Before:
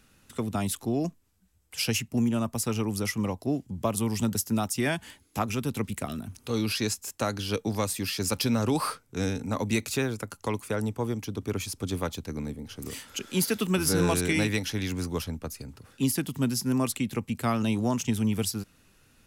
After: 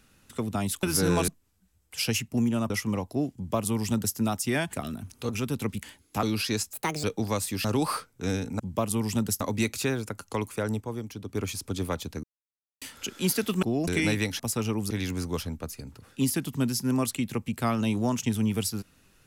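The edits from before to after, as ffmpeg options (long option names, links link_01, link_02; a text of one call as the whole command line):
ffmpeg -i in.wav -filter_complex "[0:a]asplit=21[link_01][link_02][link_03][link_04][link_05][link_06][link_07][link_08][link_09][link_10][link_11][link_12][link_13][link_14][link_15][link_16][link_17][link_18][link_19][link_20][link_21];[link_01]atrim=end=0.832[link_22];[link_02]atrim=start=13.748:end=14.202[link_23];[link_03]atrim=start=1.078:end=2.502[link_24];[link_04]atrim=start=3.008:end=5.042[link_25];[link_05]atrim=start=5.978:end=6.542[link_26];[link_06]atrim=start=5.438:end=5.982[link_27];[link_07]atrim=start=5.038:end=5.442[link_28];[link_08]atrim=start=6.538:end=7.044[link_29];[link_09]atrim=start=7.04:end=7.51,asetpts=PTS-STARTPTS,asetrate=67914,aresample=44100,atrim=end_sample=13459,asetpts=PTS-STARTPTS[link_30];[link_10]atrim=start=7.506:end=8.122[link_31];[link_11]atrim=start=8.578:end=9.532[link_32];[link_12]atrim=start=3.658:end=4.472[link_33];[link_13]atrim=start=9.528:end=10.932[link_34];[link_14]atrim=start=10.928:end=11.472,asetpts=PTS-STARTPTS,volume=-4.5dB[link_35];[link_15]atrim=start=11.468:end=12.36,asetpts=PTS-STARTPTS,afade=type=out:start_time=0.888:duration=0.004:curve=hsin[link_36];[link_16]atrim=start=12.36:end=12.94,asetpts=PTS-STARTPTS,volume=0[link_37];[link_17]atrim=start=12.94:end=13.752,asetpts=PTS-STARTPTS,afade=type=in:duration=0.004:curve=hsin[link_38];[link_18]atrim=start=0.828:end=1.082[link_39];[link_19]atrim=start=14.198:end=14.722[link_40];[link_20]atrim=start=2.498:end=3.012[link_41];[link_21]atrim=start=14.718[link_42];[link_22][link_23]acrossfade=duration=0.004:curve1=hsin:curve2=hsin[link_43];[link_43][link_24]acrossfade=duration=0.004:curve1=hsin:curve2=hsin[link_44];[link_44][link_25]acrossfade=duration=0.004:curve1=hsin:curve2=hsin[link_45];[link_45][link_26]acrossfade=duration=0.004:curve1=hsin:curve2=hsin[link_46];[link_46][link_27]acrossfade=duration=0.004:curve1=hsin:curve2=hsin[link_47];[link_47][link_28]acrossfade=duration=0.004:curve1=hsin:curve2=hsin[link_48];[link_48][link_29]acrossfade=duration=0.004:curve1=hsin:curve2=hsin[link_49];[link_49][link_30]acrossfade=duration=0.004:curve1=hsin:curve2=hsin[link_50];[link_50][link_31]acrossfade=duration=0.004:curve1=hsin:curve2=hsin[link_51];[link_51][link_32]acrossfade=duration=0.004:curve1=hsin:curve2=hsin[link_52];[link_52][link_33]acrossfade=duration=0.004:curve1=hsin:curve2=hsin[link_53];[link_53][link_34]acrossfade=duration=0.004:curve1=hsin:curve2=hsin[link_54];[link_54][link_35]acrossfade=duration=0.004:curve1=hsin:curve2=hsin[link_55];[link_36][link_37][link_38]concat=n=3:v=0:a=1[link_56];[link_55][link_56]acrossfade=duration=0.004:curve1=hsin:curve2=hsin[link_57];[link_57][link_39]acrossfade=duration=0.004:curve1=hsin:curve2=hsin[link_58];[link_58][link_40]acrossfade=duration=0.004:curve1=hsin:curve2=hsin[link_59];[link_59][link_41]acrossfade=duration=0.004:curve1=hsin:curve2=hsin[link_60];[link_60][link_42]acrossfade=duration=0.004:curve1=hsin:curve2=hsin" out.wav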